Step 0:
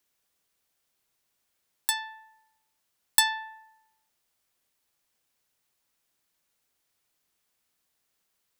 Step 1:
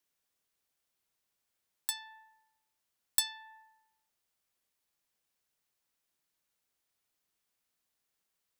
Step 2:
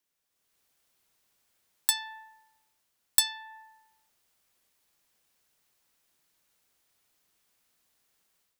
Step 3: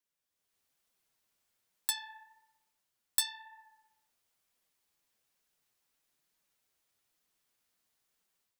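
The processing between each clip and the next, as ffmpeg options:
ffmpeg -i in.wav -filter_complex "[0:a]acrossover=split=130|3000[link_01][link_02][link_03];[link_02]acompressor=threshold=-40dB:ratio=6[link_04];[link_01][link_04][link_03]amix=inputs=3:normalize=0,volume=-6.5dB" out.wav
ffmpeg -i in.wav -af "dynaudnorm=framelen=290:gausssize=3:maxgain=10dB" out.wav
ffmpeg -i in.wav -af "flanger=delay=3.8:depth=8.4:regen=-23:speed=1.1:shape=triangular,volume=-3dB" out.wav

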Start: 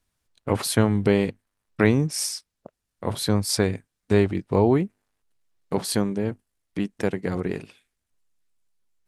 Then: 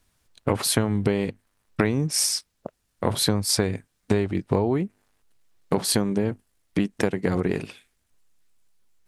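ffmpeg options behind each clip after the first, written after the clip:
ffmpeg -i in.wav -af "acompressor=threshold=-27dB:ratio=8,volume=8.5dB" out.wav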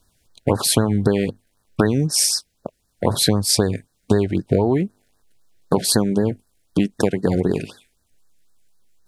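ffmpeg -i in.wav -af "afftfilt=real='re*(1-between(b*sr/1024,960*pow(2700/960,0.5+0.5*sin(2*PI*3.9*pts/sr))/1.41,960*pow(2700/960,0.5+0.5*sin(2*PI*3.9*pts/sr))*1.41))':imag='im*(1-between(b*sr/1024,960*pow(2700/960,0.5+0.5*sin(2*PI*3.9*pts/sr))/1.41,960*pow(2700/960,0.5+0.5*sin(2*PI*3.9*pts/sr))*1.41))':win_size=1024:overlap=0.75,volume=5dB" out.wav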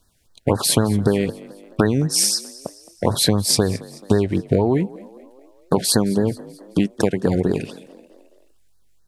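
ffmpeg -i in.wav -filter_complex "[0:a]asplit=5[link_01][link_02][link_03][link_04][link_05];[link_02]adelay=216,afreqshift=46,volume=-20.5dB[link_06];[link_03]adelay=432,afreqshift=92,volume=-26.2dB[link_07];[link_04]adelay=648,afreqshift=138,volume=-31.9dB[link_08];[link_05]adelay=864,afreqshift=184,volume=-37.5dB[link_09];[link_01][link_06][link_07][link_08][link_09]amix=inputs=5:normalize=0" out.wav

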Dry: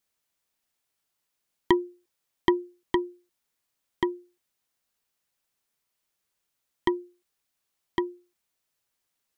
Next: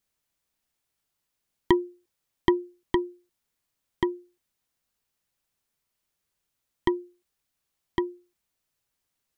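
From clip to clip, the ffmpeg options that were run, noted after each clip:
ffmpeg -i in.wav -af "lowshelf=frequency=190:gain=8,volume=-1dB" out.wav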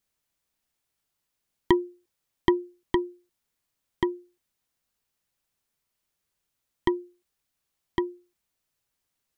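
ffmpeg -i in.wav -af anull out.wav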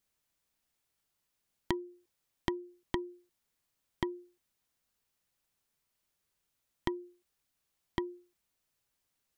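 ffmpeg -i in.wav -af "acompressor=threshold=-29dB:ratio=8,volume=-1dB" out.wav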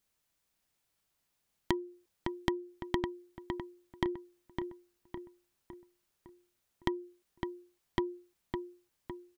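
ffmpeg -i in.wav -filter_complex "[0:a]asplit=2[link_01][link_02];[link_02]adelay=558,lowpass=frequency=2700:poles=1,volume=-5dB,asplit=2[link_03][link_04];[link_04]adelay=558,lowpass=frequency=2700:poles=1,volume=0.48,asplit=2[link_05][link_06];[link_06]adelay=558,lowpass=frequency=2700:poles=1,volume=0.48,asplit=2[link_07][link_08];[link_08]adelay=558,lowpass=frequency=2700:poles=1,volume=0.48,asplit=2[link_09][link_10];[link_10]adelay=558,lowpass=frequency=2700:poles=1,volume=0.48,asplit=2[link_11][link_12];[link_12]adelay=558,lowpass=frequency=2700:poles=1,volume=0.48[link_13];[link_01][link_03][link_05][link_07][link_09][link_11][link_13]amix=inputs=7:normalize=0,volume=1.5dB" out.wav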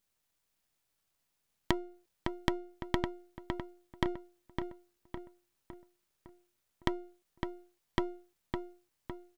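ffmpeg -i in.wav -af "aeval=exprs='if(lt(val(0),0),0.251*val(0),val(0))':channel_layout=same,volume=2.5dB" out.wav

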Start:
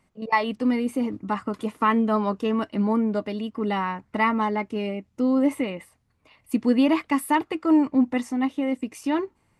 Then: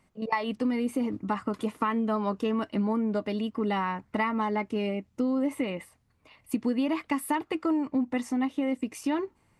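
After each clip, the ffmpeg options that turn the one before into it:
ffmpeg -i in.wav -af "acompressor=threshold=-24dB:ratio=6" out.wav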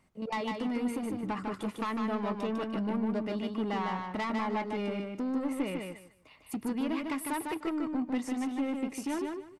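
ffmpeg -i in.wav -af "asoftclip=type=tanh:threshold=-26.5dB,aecho=1:1:151|302|453:0.631|0.133|0.0278,volume=-2dB" out.wav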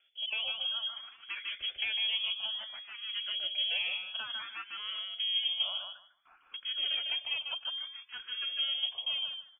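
ffmpeg -i in.wav -filter_complex "[0:a]lowpass=frequency=3000:width_type=q:width=0.5098,lowpass=frequency=3000:width_type=q:width=0.6013,lowpass=frequency=3000:width_type=q:width=0.9,lowpass=frequency=3000:width_type=q:width=2.563,afreqshift=-3500,asplit=2[link_01][link_02];[link_02]afreqshift=0.58[link_03];[link_01][link_03]amix=inputs=2:normalize=1" out.wav

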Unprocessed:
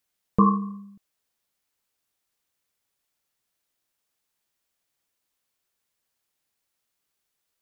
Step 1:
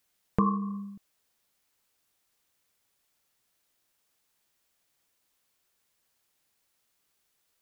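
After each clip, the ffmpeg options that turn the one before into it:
ffmpeg -i in.wav -af "acompressor=threshold=-32dB:ratio=2.5,volume=4.5dB" out.wav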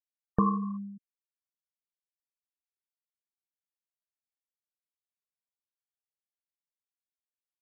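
ffmpeg -i in.wav -af "afftfilt=real='re*gte(hypot(re,im),0.02)':imag='im*gte(hypot(re,im),0.02)':win_size=1024:overlap=0.75" out.wav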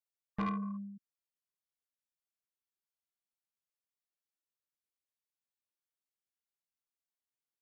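ffmpeg -i in.wav -af "asoftclip=type=tanh:threshold=-25.5dB,volume=-4dB" out.wav

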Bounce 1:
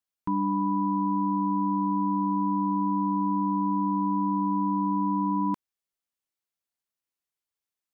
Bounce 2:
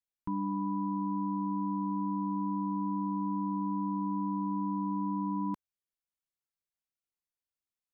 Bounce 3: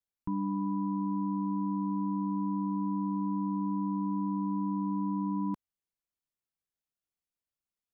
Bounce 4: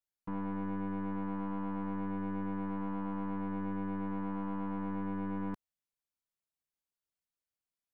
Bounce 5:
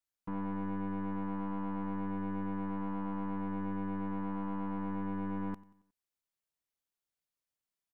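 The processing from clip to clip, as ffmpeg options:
ffmpeg -i in.wav -af "lowshelf=frequency=150:gain=10,volume=-9dB" out.wav
ffmpeg -i in.wav -af "lowshelf=frequency=460:gain=6.5,volume=-3.5dB" out.wav
ffmpeg -i in.wav -af "aeval=exprs='(tanh(44.7*val(0)+0.65)-tanh(0.65))/44.7':channel_layout=same" out.wav
ffmpeg -i in.wav -af "aecho=1:1:91|182|273|364:0.1|0.047|0.0221|0.0104" out.wav

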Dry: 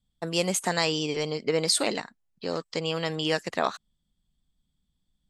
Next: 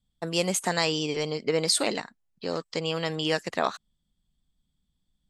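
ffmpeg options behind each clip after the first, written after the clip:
ffmpeg -i in.wav -af anull out.wav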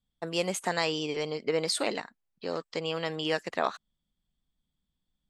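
ffmpeg -i in.wav -af "bass=frequency=250:gain=-5,treble=frequency=4000:gain=-6,volume=-2dB" out.wav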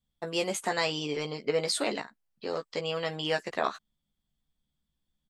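ffmpeg -i in.wav -filter_complex "[0:a]asplit=2[link_01][link_02];[link_02]adelay=14,volume=-5.5dB[link_03];[link_01][link_03]amix=inputs=2:normalize=0,volume=-1dB" out.wav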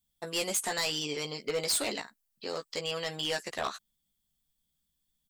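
ffmpeg -i in.wav -af "crystalizer=i=3.5:c=0,volume=21dB,asoftclip=hard,volume=-21dB,volume=-4dB" out.wav

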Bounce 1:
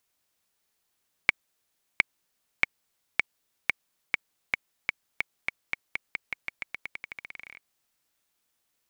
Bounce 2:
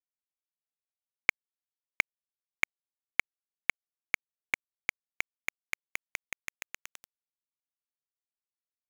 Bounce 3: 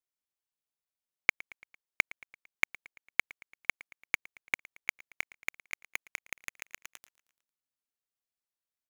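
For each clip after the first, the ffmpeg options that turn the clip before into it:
ffmpeg -i in.wav -af "equalizer=frequency=150:width=4.1:gain=-10,aeval=exprs='val(0)*gte(abs(val(0)),0.075)':channel_layout=same,volume=-2dB" out.wav
ffmpeg -i in.wav -af "aecho=1:1:113|226|339|452:0.0841|0.048|0.0273|0.0156" out.wav

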